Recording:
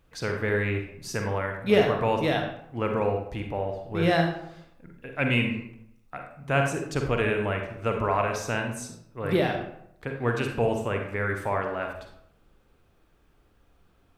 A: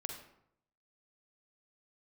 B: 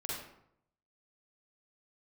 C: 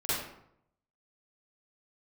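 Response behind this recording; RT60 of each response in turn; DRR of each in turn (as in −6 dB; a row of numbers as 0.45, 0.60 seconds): A; 0.75, 0.75, 0.75 seconds; 3.0, −6.0, −13.5 decibels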